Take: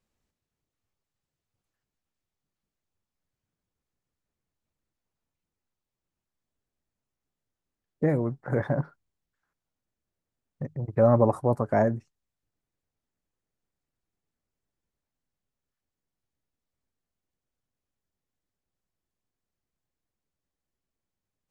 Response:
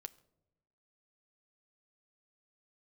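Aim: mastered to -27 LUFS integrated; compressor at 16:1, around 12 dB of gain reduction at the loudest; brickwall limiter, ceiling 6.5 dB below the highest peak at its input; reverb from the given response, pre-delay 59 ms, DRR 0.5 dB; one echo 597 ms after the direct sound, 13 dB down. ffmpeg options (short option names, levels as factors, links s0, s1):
-filter_complex "[0:a]acompressor=threshold=0.0501:ratio=16,alimiter=limit=0.075:level=0:latency=1,aecho=1:1:597:0.224,asplit=2[s0][s1];[1:a]atrim=start_sample=2205,adelay=59[s2];[s1][s2]afir=irnorm=-1:irlink=0,volume=1.68[s3];[s0][s3]amix=inputs=2:normalize=0,volume=2"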